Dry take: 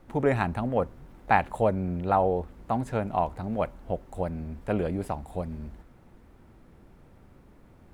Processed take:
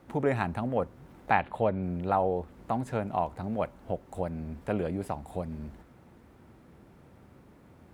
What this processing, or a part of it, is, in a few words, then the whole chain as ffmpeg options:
parallel compression: -filter_complex "[0:a]highpass=76,asettb=1/sr,asplit=3[link_01][link_02][link_03];[link_01]atrim=end=1.324[link_04];[link_02]atrim=start=1.32:end=1.83,asetpts=PTS-STARTPTS,afade=type=in:duration=0.004:curve=qsin,afade=type=out:start_time=0.506:duration=0.004:curve=qsin,highshelf=frequency=4700:width_type=q:width=1.5:gain=-10[link_05];[link_03]atrim=start=1.826[link_06];[link_04][link_05]acrossfade=duration=0.004:curve1=hsin:curve2=qsin[link_07];[link_07][link_06]acrossfade=duration=0.004:curve1=qsin:curve2=hsin,asplit=2[link_08][link_09];[link_09]acompressor=threshold=-35dB:ratio=6,volume=-1dB[link_10];[link_08][link_10]amix=inputs=2:normalize=0,volume=-4.5dB"

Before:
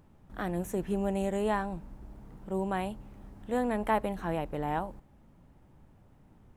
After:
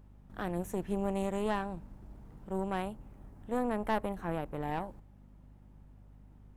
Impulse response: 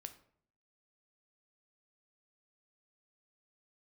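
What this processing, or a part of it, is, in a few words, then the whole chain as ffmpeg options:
valve amplifier with mains hum: -filter_complex "[0:a]asettb=1/sr,asplit=3[link_01][link_02][link_03];[link_01]atrim=end=2.824[link_04];[link_02]atrim=start=2.82:end=4.61,asetpts=PTS-STARTPTS,afade=type=in:duration=0.004:curve=qsin,afade=type=out:start_time=1.786:duration=0.004:curve=qsin,equalizer=frequency=3900:width_type=o:width=1.5:gain=-5[link_05];[link_03]atrim=start=4.606[link_06];[link_04][link_05]acrossfade=duration=0.004:curve1=hsin:curve2=qsin[link_07];[link_07][link_06]acrossfade=duration=0.004:curve1=qsin:curve2=hsin,aeval=exprs='(tanh(12.6*val(0)+0.7)-tanh(0.7))/12.6':channel_layout=same,aeval=exprs='val(0)+0.00178*(sin(2*PI*50*n/s)+sin(2*PI*2*50*n/s)/2+sin(2*PI*3*50*n/s)/3+sin(2*PI*4*50*n/s)/4+sin(2*PI*5*50*n/s)/5)':channel_layout=same"

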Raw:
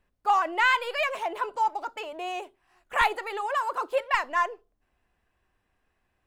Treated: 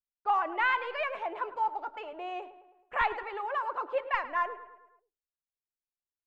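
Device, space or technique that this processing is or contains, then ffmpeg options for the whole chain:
hearing-loss simulation: -filter_complex "[0:a]asettb=1/sr,asplit=3[link_01][link_02][link_03];[link_01]atrim=end=3.234[link_04];[link_02]atrim=start=3.23:end=3.64,asetpts=PTS-STARTPTS,afade=type=in:duration=0.004:curve=qsin,afade=type=out:start_time=0.406:duration=0.004:curve=qsin,highpass=280[link_05];[link_03]atrim=start=3.636[link_06];[link_04][link_05]acrossfade=duration=0.004:curve1=hsin:curve2=qsin[link_07];[link_07][link_06]acrossfade=duration=0.004:curve1=qsin:curve2=hsin,lowpass=2500,agate=range=-33dB:threshold=-51dB:ratio=3:detection=peak,asplit=2[link_08][link_09];[link_09]adelay=107,lowpass=frequency=3200:poles=1,volume=-14dB,asplit=2[link_10][link_11];[link_11]adelay=107,lowpass=frequency=3200:poles=1,volume=0.54,asplit=2[link_12][link_13];[link_13]adelay=107,lowpass=frequency=3200:poles=1,volume=0.54,asplit=2[link_14][link_15];[link_15]adelay=107,lowpass=frequency=3200:poles=1,volume=0.54,asplit=2[link_16][link_17];[link_17]adelay=107,lowpass=frequency=3200:poles=1,volume=0.54[link_18];[link_08][link_10][link_12][link_14][link_16][link_18]amix=inputs=6:normalize=0,volume=-4.5dB"

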